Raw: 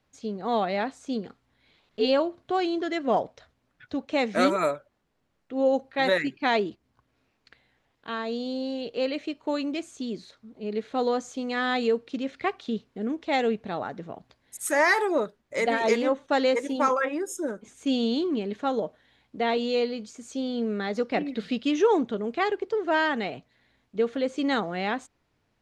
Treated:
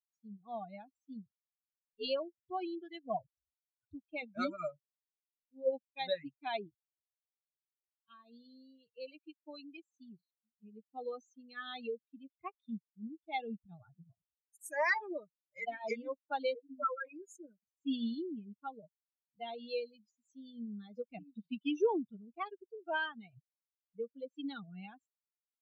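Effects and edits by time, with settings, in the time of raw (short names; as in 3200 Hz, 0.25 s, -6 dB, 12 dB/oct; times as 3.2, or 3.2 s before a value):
4.14–5.71 de-hum 135.5 Hz, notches 8
16.56–17.05 spectral contrast raised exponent 3.9
whole clip: per-bin expansion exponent 3; resonant high shelf 5000 Hz -6.5 dB, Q 1.5; gain -6 dB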